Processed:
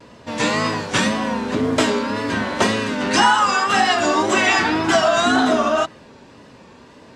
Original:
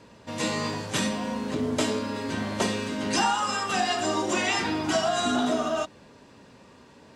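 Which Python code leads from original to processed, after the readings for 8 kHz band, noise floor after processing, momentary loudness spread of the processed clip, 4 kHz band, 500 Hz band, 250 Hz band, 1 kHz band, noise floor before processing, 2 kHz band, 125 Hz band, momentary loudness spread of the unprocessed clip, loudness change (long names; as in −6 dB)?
+5.0 dB, −46 dBFS, 7 LU, +8.0 dB, +8.5 dB, +7.5 dB, +10.0 dB, −53 dBFS, +11.5 dB, +6.0 dB, 6 LU, +9.0 dB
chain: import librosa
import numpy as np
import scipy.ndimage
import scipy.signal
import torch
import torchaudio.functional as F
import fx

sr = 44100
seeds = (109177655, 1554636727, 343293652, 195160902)

y = fx.dynamic_eq(x, sr, hz=1500.0, q=1.0, threshold_db=-41.0, ratio=4.0, max_db=5)
y = fx.vibrato(y, sr, rate_hz=1.9, depth_cents=82.0)
y = fx.high_shelf(y, sr, hz=9600.0, db=-8.5)
y = fx.hum_notches(y, sr, base_hz=50, count=4)
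y = F.gain(torch.from_numpy(y), 7.5).numpy()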